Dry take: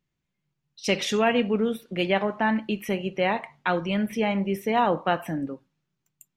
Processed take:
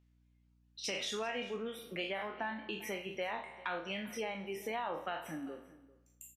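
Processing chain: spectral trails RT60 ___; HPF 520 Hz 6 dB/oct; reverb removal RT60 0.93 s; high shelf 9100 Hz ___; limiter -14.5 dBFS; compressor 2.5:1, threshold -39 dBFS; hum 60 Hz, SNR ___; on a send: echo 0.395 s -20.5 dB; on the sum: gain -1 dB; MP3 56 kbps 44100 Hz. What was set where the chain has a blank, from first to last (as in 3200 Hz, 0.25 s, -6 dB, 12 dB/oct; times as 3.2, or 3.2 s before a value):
0.92 s, -6.5 dB, 28 dB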